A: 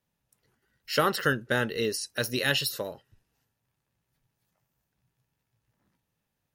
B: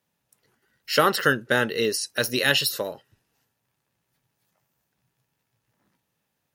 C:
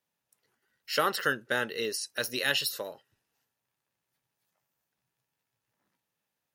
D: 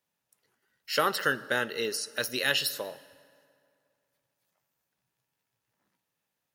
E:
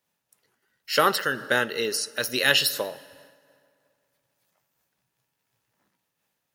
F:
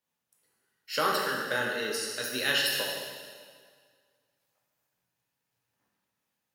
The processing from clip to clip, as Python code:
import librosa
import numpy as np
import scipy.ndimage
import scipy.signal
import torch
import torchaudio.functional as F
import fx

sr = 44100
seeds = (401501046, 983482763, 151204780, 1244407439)

y1 = fx.highpass(x, sr, hz=190.0, slope=6)
y1 = y1 * 10.0 ** (5.5 / 20.0)
y2 = fx.low_shelf(y1, sr, hz=290.0, db=-8.0)
y2 = y2 * 10.0 ** (-6.5 / 20.0)
y3 = fx.rev_fdn(y2, sr, rt60_s=2.4, lf_ratio=0.95, hf_ratio=0.65, size_ms=32.0, drr_db=16.5)
y3 = y3 * 10.0 ** (1.0 / 20.0)
y4 = fx.am_noise(y3, sr, seeds[0], hz=5.7, depth_pct=60)
y4 = y4 * 10.0 ** (8.0 / 20.0)
y5 = fx.rev_plate(y4, sr, seeds[1], rt60_s=1.7, hf_ratio=1.0, predelay_ms=0, drr_db=-1.5)
y5 = y5 * 10.0 ** (-9.0 / 20.0)